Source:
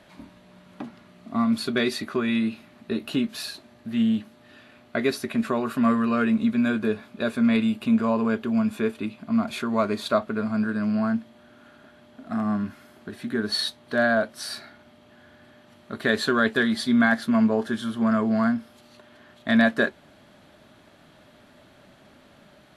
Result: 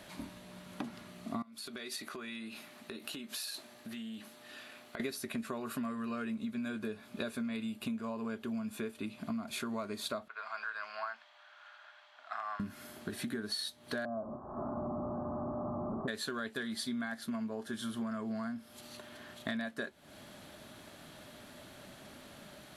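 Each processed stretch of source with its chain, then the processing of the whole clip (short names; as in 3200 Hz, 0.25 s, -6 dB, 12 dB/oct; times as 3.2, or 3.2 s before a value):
1.42–5 HPF 470 Hz 6 dB/oct + compressor 10:1, threshold -41 dBFS
10.28–12.6 HPF 860 Hz 24 dB/oct + air absorption 170 m
14.05–16.08 delta modulation 64 kbps, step -23.5 dBFS + steep low-pass 1200 Hz 72 dB/oct + notch comb 470 Hz
whole clip: high shelf 5500 Hz +12 dB; compressor 12:1, threshold -35 dBFS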